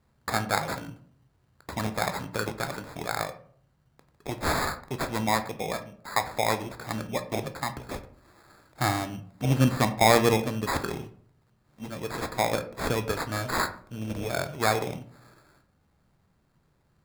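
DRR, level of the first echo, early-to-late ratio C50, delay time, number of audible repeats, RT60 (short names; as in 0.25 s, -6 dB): 8.0 dB, none, 13.5 dB, none, none, 0.60 s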